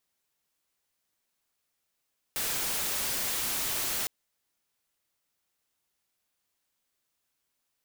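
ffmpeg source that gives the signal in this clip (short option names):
-f lavfi -i "anoisesrc=c=white:a=0.0488:d=1.71:r=44100:seed=1"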